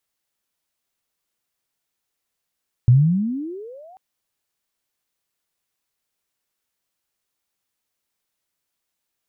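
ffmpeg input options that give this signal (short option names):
-f lavfi -i "aevalsrc='pow(10,(-7.5-35.5*t/1.09)/20)*sin(2*PI*116*1.09/(33*log(2)/12)*(exp(33*log(2)/12*t/1.09)-1))':d=1.09:s=44100"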